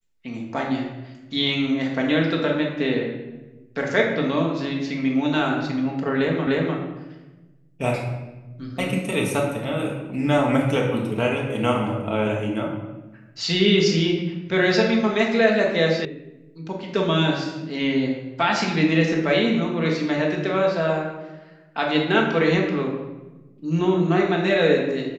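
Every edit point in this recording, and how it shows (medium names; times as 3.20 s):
6.47 s: repeat of the last 0.3 s
16.05 s: sound stops dead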